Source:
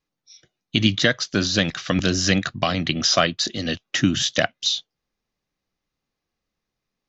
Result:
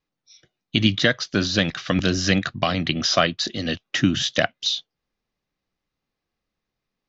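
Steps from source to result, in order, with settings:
low-pass filter 5,300 Hz 12 dB per octave

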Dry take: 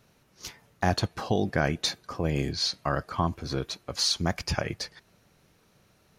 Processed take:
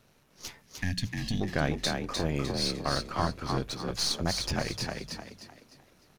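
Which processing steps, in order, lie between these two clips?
gain on one half-wave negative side −7 dB
gain on a spectral selection 0:00.62–0:01.41, 280–1,600 Hz −21 dB
in parallel at −0.5 dB: downward compressor, threshold −33 dBFS, peak gain reduction 12.5 dB
on the sum: mains-hum notches 60/120/180 Hz
on a send: echo with shifted repeats 303 ms, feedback 36%, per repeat +45 Hz, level −4 dB
on the sum: level −4 dB

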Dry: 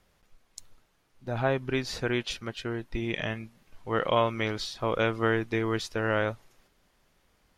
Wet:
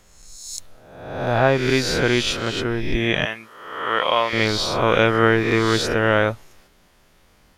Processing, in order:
peak hold with a rise ahead of every peak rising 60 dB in 0.98 s
0:03.25–0:04.33: high-pass filter 1,000 Hz 6 dB per octave
level +8.5 dB

